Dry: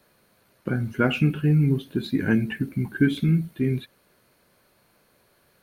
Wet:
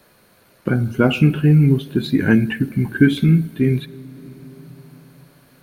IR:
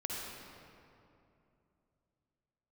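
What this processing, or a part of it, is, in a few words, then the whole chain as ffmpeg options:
compressed reverb return: -filter_complex "[0:a]asettb=1/sr,asplit=3[s0][s1][s2];[s0]atrim=end=0.744[s3];[s1]atrim=start=0.74:end=1.23,asetpts=PTS-STARTPTS,afade=t=in:d=0.004:c=qsin,afade=t=out:st=0.486:d=0.004:c=qsin,equalizer=f=1800:t=o:w=0.45:g=-14.5[s4];[s2]atrim=start=1.226[s5];[s3][s4]acrossfade=d=0.004:c1=hsin:c2=qsin[s6];[s6][s5]acrossfade=d=0.004:c1=qsin:c2=hsin,asplit=2[s7][s8];[1:a]atrim=start_sample=2205[s9];[s8][s9]afir=irnorm=-1:irlink=0,acompressor=threshold=0.0355:ratio=6,volume=0.282[s10];[s7][s10]amix=inputs=2:normalize=0,volume=2.11"

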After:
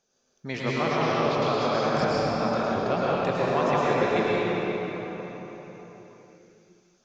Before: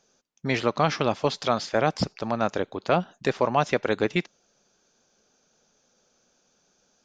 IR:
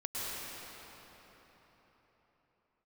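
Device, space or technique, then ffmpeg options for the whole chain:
cathedral: -filter_complex "[0:a]asettb=1/sr,asplit=3[s0][s1][s2];[s0]atrim=end=0.724[s3];[s1]atrim=start=0.72:end=1.94,asetpts=PTS-STARTPTS,afade=t=in:d=0.004:c=qsin,afade=t=out:st=1.216:d=0.004:c=qsin,lowpass=5400[s4];[s2]atrim=start=1.936[s5];[s3][s4]acrossfade=d=0.004:c1=hsin:c2=qsin[s6];[s6][s5]acrossfade=d=0.004:c1=qsin:c2=hsin[s7];[1:a]atrim=start_sample=2205[s8];[s7][s8]afir=irnorm=-1:irlink=0,volume=0.631"

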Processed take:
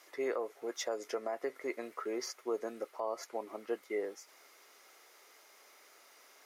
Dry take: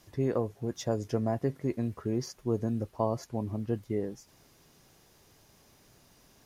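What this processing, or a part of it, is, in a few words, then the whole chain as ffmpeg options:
laptop speaker: -af "highpass=f=410:w=0.5412,highpass=f=410:w=1.3066,equalizer=f=1300:t=o:w=0.26:g=9.5,equalizer=f=2100:t=o:w=0.27:g=10,alimiter=level_in=1.33:limit=0.0631:level=0:latency=1:release=126,volume=0.75,volume=1.12"

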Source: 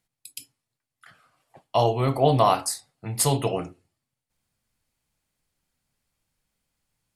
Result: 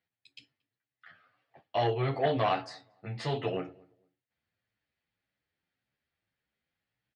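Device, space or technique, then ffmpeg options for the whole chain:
barber-pole flanger into a guitar amplifier: -filter_complex "[0:a]asplit=2[s0][s1];[s1]adelay=9.7,afreqshift=1.8[s2];[s0][s2]amix=inputs=2:normalize=1,asoftclip=type=tanh:threshold=0.15,highpass=90,equalizer=f=150:t=q:w=4:g=-5,equalizer=f=230:t=q:w=4:g=-3,equalizer=f=1000:t=q:w=4:g=-6,equalizer=f=1800:t=q:w=4:g=7,lowpass=f=4000:w=0.5412,lowpass=f=4000:w=1.3066,asettb=1/sr,asplit=3[s3][s4][s5];[s3]atrim=end=1.814[s6];[s4]atrim=start=1.81:end=2.3,asetpts=PTS-STARTPTS,afade=t=in:d=0.004:c=qsin,afade=t=out:st=0.486:d=0.004:c=qsin,highshelf=f=4000:g=6[s7];[s5]atrim=start=2.296[s8];[s6][s7]acrossfade=d=0.004:c1=hsin:c2=qsin[s9];[s9][s8]acrossfade=d=0.004:c1=qsin:c2=hsin,asplit=2[s10][s11];[s11]adelay=229,lowpass=f=1000:p=1,volume=0.0631,asplit=2[s12][s13];[s13]adelay=229,lowpass=f=1000:p=1,volume=0.23[s14];[s10][s12][s14]amix=inputs=3:normalize=0,volume=0.794"

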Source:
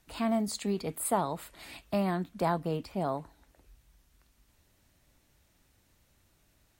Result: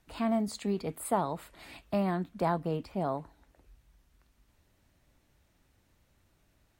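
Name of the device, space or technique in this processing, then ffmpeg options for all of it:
behind a face mask: -af "highshelf=f=3500:g=-7"

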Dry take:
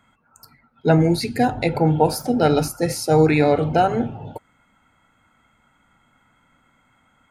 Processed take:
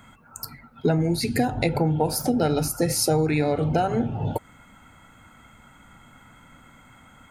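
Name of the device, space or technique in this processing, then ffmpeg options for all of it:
ASMR close-microphone chain: -af "lowshelf=f=220:g=5.5,acompressor=threshold=0.0355:ratio=5,highshelf=f=6500:g=7,volume=2.51"

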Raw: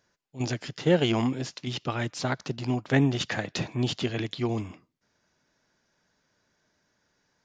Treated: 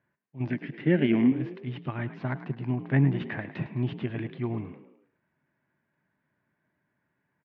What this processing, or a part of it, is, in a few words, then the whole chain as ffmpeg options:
bass cabinet: -filter_complex "[0:a]asettb=1/sr,asplit=3[s0][s1][s2];[s0]atrim=end=0.504[s3];[s1]atrim=start=0.5:end=1.32,asetpts=PTS-STARTPTS,afade=t=in:d=0.004:c=qsin,afade=t=out:st=0.816:d=0.004:c=qsin,equalizer=f=125:t=o:w=1:g=-6,equalizer=f=250:t=o:w=1:g=10,equalizer=f=1000:t=o:w=1:g=-9,equalizer=f=2000:t=o:w=1:g=8[s4];[s2]atrim=start=1.316[s5];[s3][s4]acrossfade=d=0.004:c1=hsin:c2=qsin[s6];[s6][s5]acrossfade=d=0.004:c1=qsin:c2=hsin,highpass=89,equalizer=f=140:t=q:w=4:g=6,equalizer=f=480:t=q:w=4:g=-10,equalizer=f=750:t=q:w=4:g=-5,equalizer=f=1300:t=q:w=4:g=-6,lowpass=f=2200:w=0.5412,lowpass=f=2200:w=1.3066,asplit=5[s7][s8][s9][s10][s11];[s8]adelay=106,afreqshift=47,volume=0.211[s12];[s9]adelay=212,afreqshift=94,volume=0.0955[s13];[s10]adelay=318,afreqshift=141,volume=0.0427[s14];[s11]adelay=424,afreqshift=188,volume=0.0193[s15];[s7][s12][s13][s14][s15]amix=inputs=5:normalize=0,volume=0.794"

